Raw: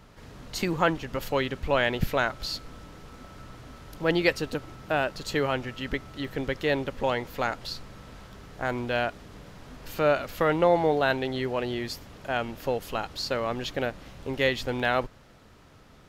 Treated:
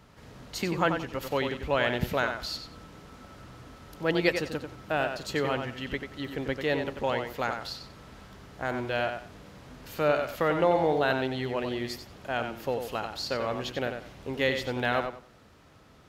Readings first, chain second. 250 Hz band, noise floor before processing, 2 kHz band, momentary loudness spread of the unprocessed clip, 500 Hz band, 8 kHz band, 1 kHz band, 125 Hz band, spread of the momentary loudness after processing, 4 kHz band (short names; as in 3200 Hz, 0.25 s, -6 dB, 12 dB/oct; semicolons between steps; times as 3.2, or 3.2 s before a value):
-1.5 dB, -53 dBFS, -1.5 dB, 22 LU, -1.5 dB, -2.0 dB, -1.5 dB, -2.0 dB, 22 LU, -2.0 dB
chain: HPF 45 Hz; tape echo 92 ms, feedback 24%, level -6 dB, low-pass 5000 Hz; gain -2.5 dB